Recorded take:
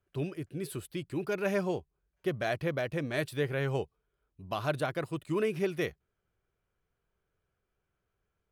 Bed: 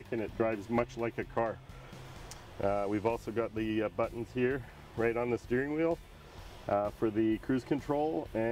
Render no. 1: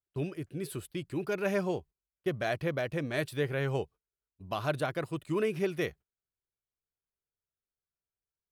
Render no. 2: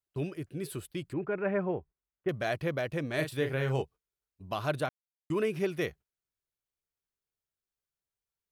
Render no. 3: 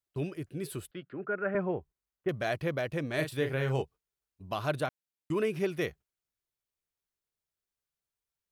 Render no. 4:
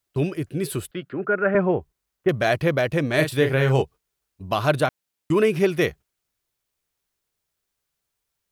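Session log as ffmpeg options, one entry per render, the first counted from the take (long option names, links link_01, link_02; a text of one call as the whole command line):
ffmpeg -i in.wav -af "agate=range=-20dB:threshold=-49dB:ratio=16:detection=peak" out.wav
ffmpeg -i in.wav -filter_complex "[0:a]asettb=1/sr,asplit=3[link_01][link_02][link_03];[link_01]atrim=end=1.134[link_04];[link_02]atrim=start=1.13:end=2.29,asetpts=PTS-STARTPTS,afade=type=in:duration=0.004:curve=qsin,afade=type=out:start_time=1.156:duration=0.004:curve=qsin,lowpass=frequency=2100:width=0.5412,lowpass=frequency=2100:width=1.3066[link_05];[link_03]atrim=start=2.286[link_06];[link_04][link_05]acrossfade=duration=0.004:curve1=hsin:curve2=qsin[link_07];[link_07][link_06]acrossfade=duration=0.004:curve1=qsin:curve2=hsin,asettb=1/sr,asplit=3[link_08][link_09][link_10];[link_08]atrim=end=3.154[link_11];[link_09]atrim=start=3.15:end=3.82,asetpts=PTS-STARTPTS,afade=type=in:duration=0.004:curve=qsin,afade=type=out:start_time=0.666:duration=0.004:curve=qsin,asplit=2[link_12][link_13];[link_13]adelay=38,volume=-6.5dB[link_14];[link_12][link_14]amix=inputs=2:normalize=0,atrim=end_sample=29547[link_15];[link_10]atrim=start=3.816[link_16];[link_11][link_15]acrossfade=duration=0.004:curve1=hsin:curve2=qsin[link_17];[link_17][link_16]acrossfade=duration=0.004:curve1=qsin:curve2=hsin,asplit=3[link_18][link_19][link_20];[link_18]atrim=end=4.89,asetpts=PTS-STARTPTS,afade=type=out:start_time=4.886:duration=0.004:curve=hsin[link_21];[link_19]atrim=start=4.89:end=5.3,asetpts=PTS-STARTPTS,volume=0[link_22];[link_20]atrim=start=5.3,asetpts=PTS-STARTPTS,afade=type=in:duration=0.004:curve=hsin[link_23];[link_21][link_22][link_23]concat=n=3:v=0:a=1" out.wav
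ffmpeg -i in.wav -filter_complex "[0:a]asettb=1/sr,asplit=3[link_01][link_02][link_03];[link_01]atrim=end=0.914[link_04];[link_02]atrim=start=0.91:end=1.55,asetpts=PTS-STARTPTS,afade=type=in:duration=0.004:curve=qsin,afade=type=out:start_time=0.636:duration=0.004:curve=qsin,highpass=frequency=160:width=0.5412,highpass=frequency=160:width=1.3066,equalizer=frequency=160:width_type=q:width=4:gain=-8,equalizer=frequency=320:width_type=q:width=4:gain=-9,equalizer=frequency=920:width_type=q:width=4:gain=-10,equalizer=frequency=1400:width_type=q:width=4:gain=8,equalizer=frequency=2400:width_type=q:width=4:gain=-8,lowpass=frequency=3000:width=0.5412,lowpass=frequency=3000:width=1.3066[link_05];[link_03]atrim=start=1.546[link_06];[link_04][link_05]acrossfade=duration=0.004:curve1=hsin:curve2=qsin[link_07];[link_07][link_06]acrossfade=duration=0.004:curve1=qsin:curve2=hsin" out.wav
ffmpeg -i in.wav -af "volume=11dB" out.wav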